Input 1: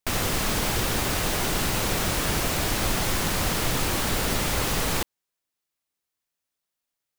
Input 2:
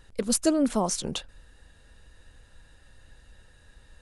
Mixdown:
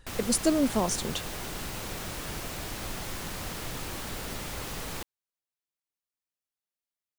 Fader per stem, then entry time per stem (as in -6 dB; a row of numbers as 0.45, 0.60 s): -11.5, -1.5 dB; 0.00, 0.00 s